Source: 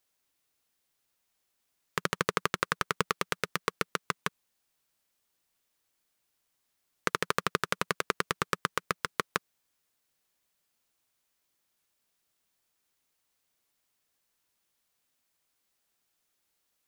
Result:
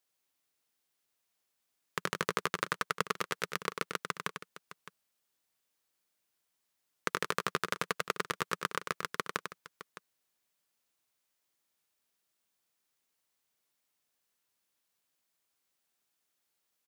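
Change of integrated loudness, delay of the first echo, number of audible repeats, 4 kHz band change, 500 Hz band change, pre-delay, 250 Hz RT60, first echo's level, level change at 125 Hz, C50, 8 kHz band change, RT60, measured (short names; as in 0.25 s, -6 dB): -3.0 dB, 97 ms, 2, -3.0 dB, -3.5 dB, none, none, -7.0 dB, -5.0 dB, none, -3.0 dB, none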